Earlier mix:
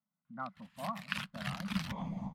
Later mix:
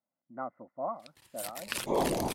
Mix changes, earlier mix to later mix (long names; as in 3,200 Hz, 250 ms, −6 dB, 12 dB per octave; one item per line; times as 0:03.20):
first sound: entry +0.60 s
second sound +9.5 dB
master: remove drawn EQ curve 110 Hz 0 dB, 190 Hz +13 dB, 380 Hz −25 dB, 570 Hz −12 dB, 1,100 Hz 0 dB, 1,500 Hz +1 dB, 3,200 Hz −2 dB, 8,700 Hz −18 dB